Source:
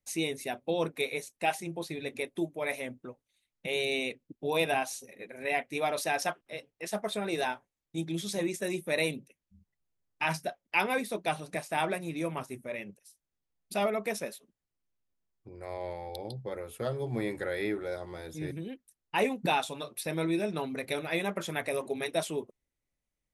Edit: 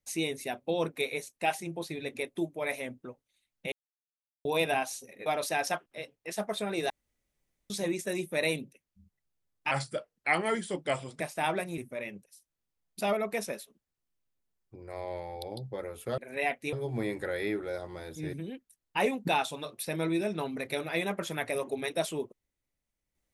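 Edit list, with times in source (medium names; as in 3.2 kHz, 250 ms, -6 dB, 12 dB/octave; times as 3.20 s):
3.72–4.45 s: mute
5.26–5.81 s: move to 16.91 s
7.45–8.25 s: room tone
10.26–11.54 s: speed 86%
12.12–12.51 s: delete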